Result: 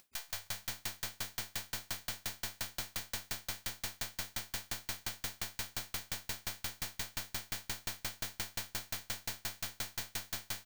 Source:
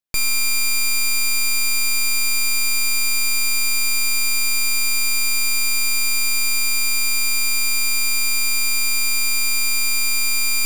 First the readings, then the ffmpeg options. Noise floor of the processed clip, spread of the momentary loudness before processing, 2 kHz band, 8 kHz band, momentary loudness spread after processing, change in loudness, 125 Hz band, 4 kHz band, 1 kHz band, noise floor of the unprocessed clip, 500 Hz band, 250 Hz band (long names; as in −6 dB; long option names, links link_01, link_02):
−67 dBFS, 0 LU, −24.0 dB, −23.5 dB, 2 LU, −22.0 dB, can't be measured, −21.0 dB, −12.0 dB, −17 dBFS, −4.5 dB, −10.5 dB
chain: -filter_complex "[0:a]afftdn=noise_reduction=28:noise_floor=-35,acompressor=mode=upward:threshold=-27dB:ratio=2.5,aeval=exprs='(mod(15*val(0)+1,2)-1)/15':channel_layout=same,asplit=9[link_01][link_02][link_03][link_04][link_05][link_06][link_07][link_08][link_09];[link_02]adelay=164,afreqshift=-97,volume=-4dB[link_10];[link_03]adelay=328,afreqshift=-194,volume=-8.9dB[link_11];[link_04]adelay=492,afreqshift=-291,volume=-13.8dB[link_12];[link_05]adelay=656,afreqshift=-388,volume=-18.6dB[link_13];[link_06]adelay=820,afreqshift=-485,volume=-23.5dB[link_14];[link_07]adelay=984,afreqshift=-582,volume=-28.4dB[link_15];[link_08]adelay=1148,afreqshift=-679,volume=-33.3dB[link_16];[link_09]adelay=1312,afreqshift=-776,volume=-38.2dB[link_17];[link_01][link_10][link_11][link_12][link_13][link_14][link_15][link_16][link_17]amix=inputs=9:normalize=0,aeval=exprs='val(0)*pow(10,-38*if(lt(mod(5.7*n/s,1),2*abs(5.7)/1000),1-mod(5.7*n/s,1)/(2*abs(5.7)/1000),(mod(5.7*n/s,1)-2*abs(5.7)/1000)/(1-2*abs(5.7)/1000))/20)':channel_layout=same,volume=7dB"